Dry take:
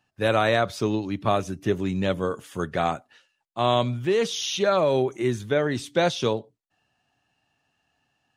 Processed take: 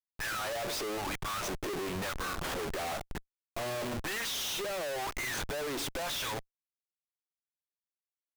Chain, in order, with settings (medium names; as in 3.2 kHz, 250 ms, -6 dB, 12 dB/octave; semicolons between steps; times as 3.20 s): LFO high-pass sine 1 Hz 350–1600 Hz; valve stage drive 33 dB, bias 0.75; Schmitt trigger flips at -48.5 dBFS; trim +3.5 dB